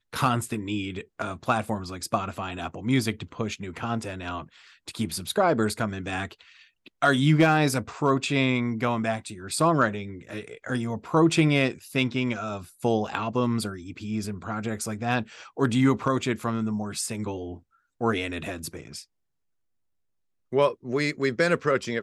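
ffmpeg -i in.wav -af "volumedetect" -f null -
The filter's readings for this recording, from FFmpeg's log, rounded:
mean_volume: -26.8 dB
max_volume: -10.3 dB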